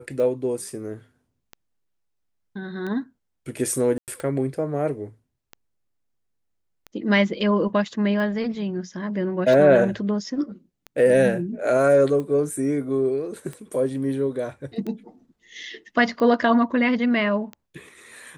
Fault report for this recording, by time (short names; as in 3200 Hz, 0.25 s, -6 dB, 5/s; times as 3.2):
tick 45 rpm -21 dBFS
3.98–4.08 gap 98 ms